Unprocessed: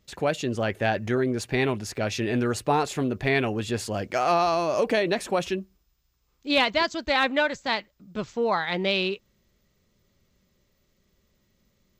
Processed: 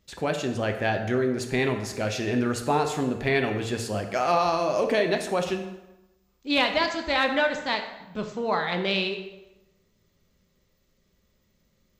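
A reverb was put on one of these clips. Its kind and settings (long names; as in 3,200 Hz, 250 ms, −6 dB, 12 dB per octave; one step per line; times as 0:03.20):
dense smooth reverb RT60 1 s, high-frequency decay 0.75×, DRR 5 dB
level −1.5 dB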